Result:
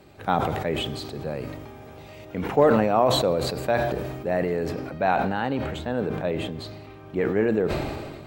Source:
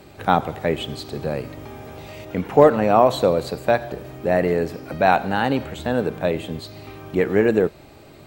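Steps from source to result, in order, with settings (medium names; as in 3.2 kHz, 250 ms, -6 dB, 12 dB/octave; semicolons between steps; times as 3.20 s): treble shelf 5.3 kHz -3.5 dB, from 4.69 s -11.5 dB; decay stretcher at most 33 dB/s; trim -6 dB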